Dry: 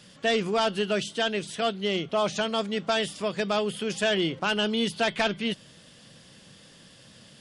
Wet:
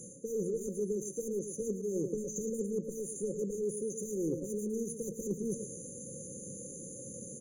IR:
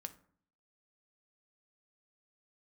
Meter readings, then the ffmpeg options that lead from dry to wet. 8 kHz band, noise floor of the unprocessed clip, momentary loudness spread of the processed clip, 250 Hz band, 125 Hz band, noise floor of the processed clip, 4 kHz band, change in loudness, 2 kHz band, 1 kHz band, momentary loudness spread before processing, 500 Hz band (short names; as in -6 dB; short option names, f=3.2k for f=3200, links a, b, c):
+1.5 dB, -53 dBFS, 8 LU, -6.5 dB, -5.5 dB, -47 dBFS, under -40 dB, -10.0 dB, under -40 dB, under -40 dB, 5 LU, -7.5 dB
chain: -filter_complex "[0:a]acontrast=90,asplit=2[a][b];[b]highpass=f=720:p=1,volume=14dB,asoftclip=type=tanh:threshold=-10dB[c];[a][c]amix=inputs=2:normalize=0,lowpass=f=5.5k:p=1,volume=-6dB,crystalizer=i=3:c=0,afftfilt=real='re*(1-between(b*sr/4096,560,4600))':imag='im*(1-between(b*sr/4096,560,4600))':win_size=4096:overlap=0.75,asplit=2[d][e];[e]adelay=140,highpass=300,lowpass=3.4k,asoftclip=type=hard:threshold=-15.5dB,volume=-23dB[f];[d][f]amix=inputs=2:normalize=0,adynamicequalizer=threshold=0.00224:dfrequency=1100:dqfactor=3.6:tfrequency=1100:tqfactor=3.6:attack=5:release=100:ratio=0.375:range=2.5:mode=cutabove:tftype=bell,areverse,acompressor=threshold=-30dB:ratio=20,areverse,highshelf=f=4.4k:g=-9,asplit=2[g][h];[h]aecho=0:1:111:0.355[i];[g][i]amix=inputs=2:normalize=0,afftfilt=real='re*eq(mod(floor(b*sr/1024/1500),2),0)':imag='im*eq(mod(floor(b*sr/1024/1500),2),0)':win_size=1024:overlap=0.75"